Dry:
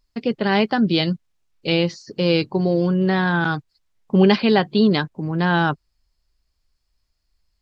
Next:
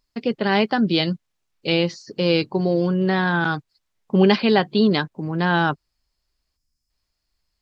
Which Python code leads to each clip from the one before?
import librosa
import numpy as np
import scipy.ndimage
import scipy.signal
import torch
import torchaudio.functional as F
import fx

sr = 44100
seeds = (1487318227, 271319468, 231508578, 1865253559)

y = fx.spec_box(x, sr, start_s=6.56, length_s=0.34, low_hz=310.0, high_hz=4800.0, gain_db=-11)
y = fx.low_shelf(y, sr, hz=97.0, db=-8.5)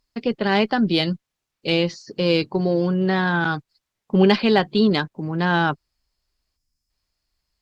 y = fx.cheby_harmonics(x, sr, harmonics=(8,), levels_db=(-37,), full_scale_db=-1.5)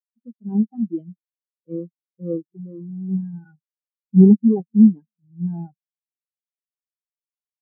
y = fx.halfwave_hold(x, sr)
y = y + 10.0 ** (-22.5 / 20.0) * np.pad(y, (int(242 * sr / 1000.0), 0))[:len(y)]
y = fx.spectral_expand(y, sr, expansion=4.0)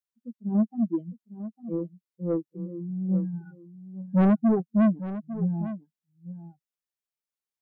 y = 10.0 ** (-17.0 / 20.0) * np.tanh(x / 10.0 ** (-17.0 / 20.0))
y = y + 10.0 ** (-13.5 / 20.0) * np.pad(y, (int(852 * sr / 1000.0), 0))[:len(y)]